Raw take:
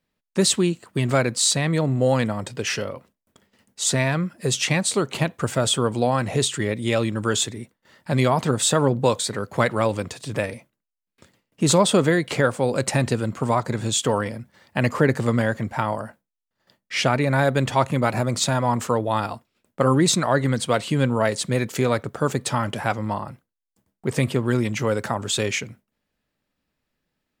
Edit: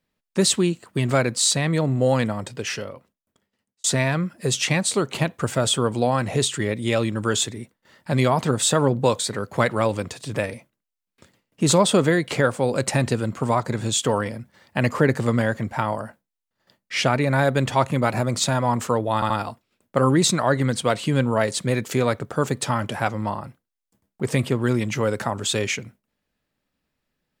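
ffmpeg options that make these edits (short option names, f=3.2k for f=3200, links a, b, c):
-filter_complex "[0:a]asplit=4[a][b][c][d];[a]atrim=end=3.84,asetpts=PTS-STARTPTS,afade=t=out:st=2.26:d=1.58[e];[b]atrim=start=3.84:end=19.222,asetpts=PTS-STARTPTS,afade=t=in:d=0.004:c=hsin[f];[c]atrim=start=19.138:end=19.222[g];[d]atrim=start=19.138[h];[e][f]concat=n=2:v=0:a=1[i];[i][g]acrossfade=d=0.004:c1=hsin:c2=hsin[j];[j][h]acrossfade=d=0.004:c1=hsin:c2=hsin"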